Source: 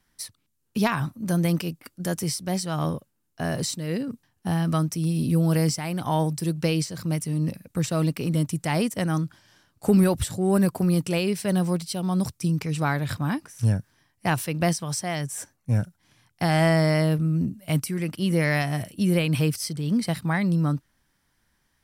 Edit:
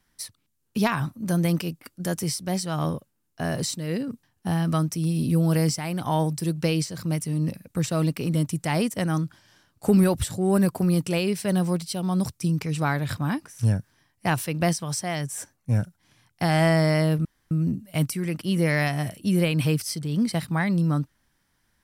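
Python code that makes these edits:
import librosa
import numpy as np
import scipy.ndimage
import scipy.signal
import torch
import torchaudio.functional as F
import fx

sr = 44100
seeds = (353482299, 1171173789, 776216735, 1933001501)

y = fx.edit(x, sr, fx.insert_room_tone(at_s=17.25, length_s=0.26), tone=tone)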